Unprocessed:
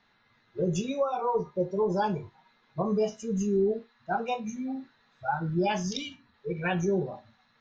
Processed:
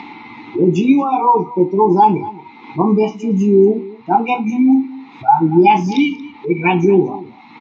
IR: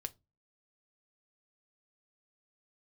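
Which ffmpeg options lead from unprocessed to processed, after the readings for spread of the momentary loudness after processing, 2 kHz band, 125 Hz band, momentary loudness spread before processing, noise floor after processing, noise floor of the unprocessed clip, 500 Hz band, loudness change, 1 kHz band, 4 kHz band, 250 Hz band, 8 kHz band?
12 LU, +12.5 dB, +12.0 dB, 12 LU, -41 dBFS, -67 dBFS, +13.0 dB, +15.5 dB, +18.5 dB, +8.5 dB, +17.5 dB, no reading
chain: -filter_complex "[0:a]acompressor=mode=upward:threshold=0.0178:ratio=2.5,asplit=3[s0][s1][s2];[s0]bandpass=f=300:t=q:w=8,volume=1[s3];[s1]bandpass=f=870:t=q:w=8,volume=0.501[s4];[s2]bandpass=f=2240:t=q:w=8,volume=0.355[s5];[s3][s4][s5]amix=inputs=3:normalize=0,asplit=2[s6][s7];[s7]aecho=0:1:231:0.1[s8];[s6][s8]amix=inputs=2:normalize=0,alimiter=level_in=35.5:limit=0.891:release=50:level=0:latency=1,volume=0.891"

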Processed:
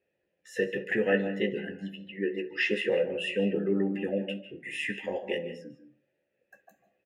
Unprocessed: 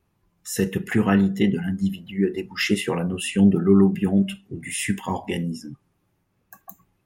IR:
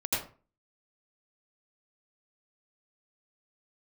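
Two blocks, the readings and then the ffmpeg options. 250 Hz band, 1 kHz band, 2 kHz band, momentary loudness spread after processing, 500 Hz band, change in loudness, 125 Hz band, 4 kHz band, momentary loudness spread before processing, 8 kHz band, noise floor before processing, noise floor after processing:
-12.5 dB, -12.5 dB, -1.5 dB, 12 LU, -2.5 dB, -8.5 dB, -15.5 dB, -6.0 dB, 13 LU, under -20 dB, -71 dBFS, -80 dBFS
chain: -filter_complex "[0:a]asplit=3[s0][s1][s2];[s0]bandpass=f=530:t=q:w=8,volume=1[s3];[s1]bandpass=f=1840:t=q:w=8,volume=0.501[s4];[s2]bandpass=f=2480:t=q:w=8,volume=0.355[s5];[s3][s4][s5]amix=inputs=3:normalize=0,asplit=2[s6][s7];[s7]adelay=14,volume=0.422[s8];[s6][s8]amix=inputs=2:normalize=0,asplit=2[s9][s10];[1:a]atrim=start_sample=2205,highshelf=f=5900:g=-10.5,adelay=65[s11];[s10][s11]afir=irnorm=-1:irlink=0,volume=0.141[s12];[s9][s12]amix=inputs=2:normalize=0,volume=2.37"

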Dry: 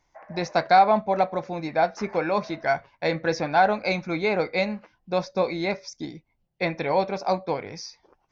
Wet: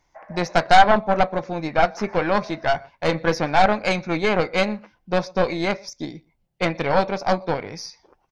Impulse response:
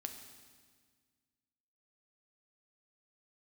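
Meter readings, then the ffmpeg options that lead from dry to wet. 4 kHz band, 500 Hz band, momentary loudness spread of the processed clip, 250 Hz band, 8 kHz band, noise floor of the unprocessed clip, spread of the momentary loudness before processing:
+6.0 dB, +2.5 dB, 14 LU, +4.0 dB, no reading, -71 dBFS, 13 LU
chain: -filter_complex "[0:a]asplit=2[s0][s1];[s1]adelay=122.4,volume=0.0501,highshelf=f=4000:g=-2.76[s2];[s0][s2]amix=inputs=2:normalize=0,aeval=exprs='0.473*(cos(1*acos(clip(val(0)/0.473,-1,1)))-cos(1*PI/2))+0.119*(cos(4*acos(clip(val(0)/0.473,-1,1)))-cos(4*PI/2))':c=same,volume=1.41"

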